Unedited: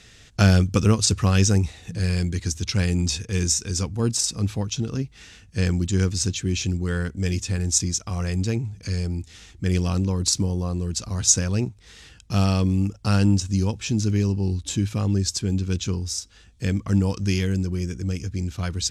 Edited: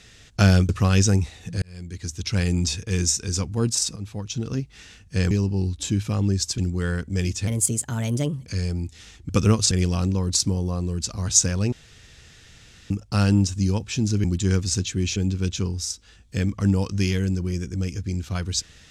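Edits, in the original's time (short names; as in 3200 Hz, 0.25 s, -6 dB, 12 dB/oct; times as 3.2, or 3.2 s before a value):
0.69–1.11 move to 9.64
2.04–2.87 fade in
4.38–4.95 fade in, from -13 dB
5.73–6.65 swap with 14.17–15.44
7.54–8.81 speed 128%
11.65–12.83 room tone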